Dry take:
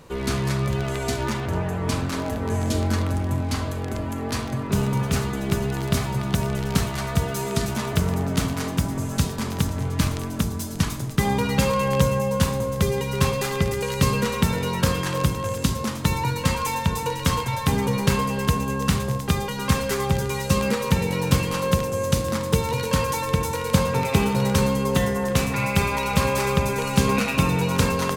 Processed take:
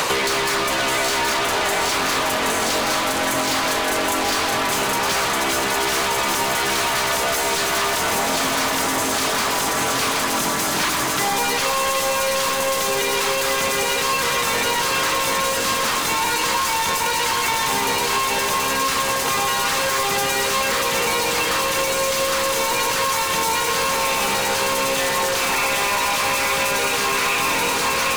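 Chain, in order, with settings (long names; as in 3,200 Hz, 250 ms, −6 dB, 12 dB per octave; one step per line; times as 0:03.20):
low-shelf EQ 140 Hz −9 dB
harmonic and percussive parts rebalanced harmonic −8 dB
low-shelf EQ 450 Hz −9 dB
compressor whose output falls as the input rises −34 dBFS, ratio −1
mid-hump overdrive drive 33 dB, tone 7,400 Hz, clips at −16 dBFS
echo with a time of its own for lows and highs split 920 Hz, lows 137 ms, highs 772 ms, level −3 dB
multiband upward and downward compressor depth 100%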